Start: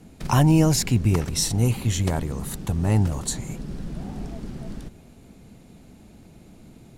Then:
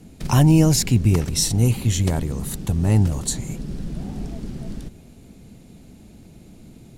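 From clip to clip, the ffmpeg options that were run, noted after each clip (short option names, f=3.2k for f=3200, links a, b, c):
-af "equalizer=f=1.1k:t=o:w=2.1:g=-5.5,volume=3.5dB"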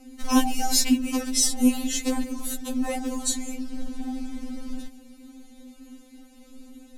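-af "afftfilt=real='re*3.46*eq(mod(b,12),0)':imag='im*3.46*eq(mod(b,12),0)':win_size=2048:overlap=0.75,volume=2dB"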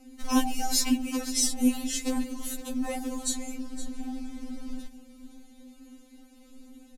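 -af "aecho=1:1:514:0.188,volume=-4dB"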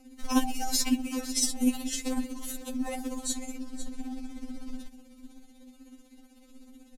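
-af "tremolo=f=16:d=0.42"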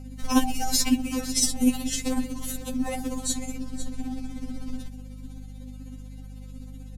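-af "aeval=exprs='val(0)+0.00708*(sin(2*PI*50*n/s)+sin(2*PI*2*50*n/s)/2+sin(2*PI*3*50*n/s)/3+sin(2*PI*4*50*n/s)/4+sin(2*PI*5*50*n/s)/5)':c=same,volume=4dB"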